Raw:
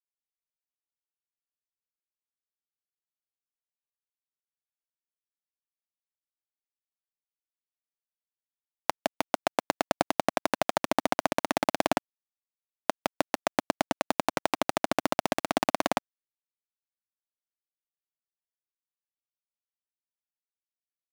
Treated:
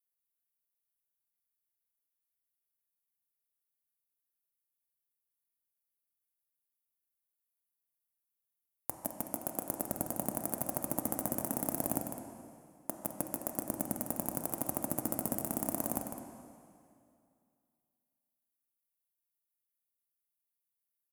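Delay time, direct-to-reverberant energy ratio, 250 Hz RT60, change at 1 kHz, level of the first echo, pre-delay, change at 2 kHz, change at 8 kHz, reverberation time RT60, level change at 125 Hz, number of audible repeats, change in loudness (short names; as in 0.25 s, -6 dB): 0.153 s, 2.0 dB, 2.5 s, -14.0 dB, -9.0 dB, 7 ms, -20.5 dB, +2.0 dB, 2.4 s, -1.0 dB, 2, -6.5 dB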